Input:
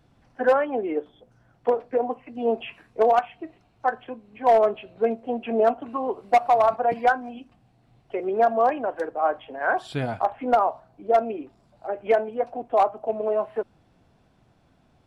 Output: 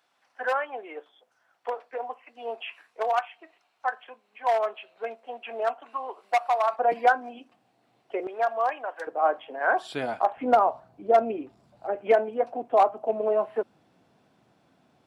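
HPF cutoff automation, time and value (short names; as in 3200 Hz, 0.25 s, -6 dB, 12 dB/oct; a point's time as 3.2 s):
930 Hz
from 6.79 s 340 Hz
from 8.27 s 900 Hz
from 9.07 s 310 Hz
from 10.37 s 82 Hz
from 11.95 s 180 Hz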